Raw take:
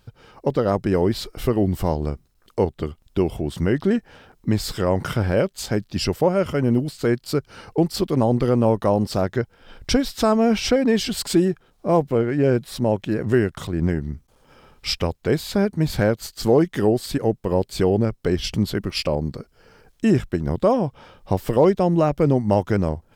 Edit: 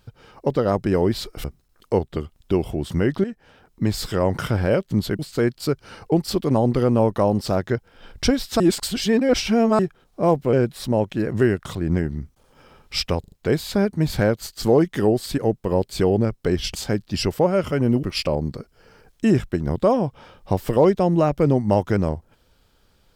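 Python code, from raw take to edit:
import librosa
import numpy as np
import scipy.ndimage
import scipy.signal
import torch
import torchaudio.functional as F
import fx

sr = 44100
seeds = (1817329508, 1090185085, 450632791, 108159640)

y = fx.edit(x, sr, fx.cut(start_s=1.44, length_s=0.66),
    fx.fade_in_from(start_s=3.9, length_s=0.72, floor_db=-12.5),
    fx.swap(start_s=5.57, length_s=1.28, other_s=18.55, other_length_s=0.28),
    fx.reverse_span(start_s=10.26, length_s=1.19),
    fx.cut(start_s=12.19, length_s=0.26),
    fx.stutter(start_s=15.12, slice_s=0.04, count=4), tone=tone)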